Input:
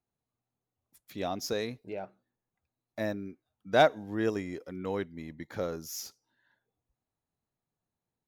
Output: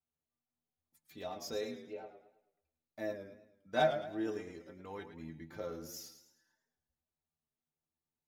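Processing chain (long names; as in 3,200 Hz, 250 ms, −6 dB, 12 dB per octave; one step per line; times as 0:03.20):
stiff-string resonator 77 Hz, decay 0.26 s, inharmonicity 0.008
feedback echo with a swinging delay time 108 ms, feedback 42%, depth 109 cents, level −10 dB
level −1 dB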